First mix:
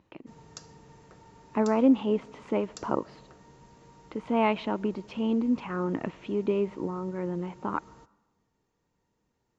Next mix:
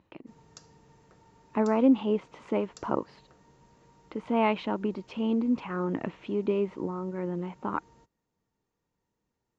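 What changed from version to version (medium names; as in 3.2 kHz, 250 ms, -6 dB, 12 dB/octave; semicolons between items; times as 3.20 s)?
background -5.0 dB; reverb: off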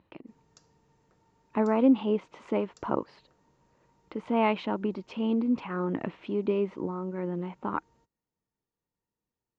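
background -8.5 dB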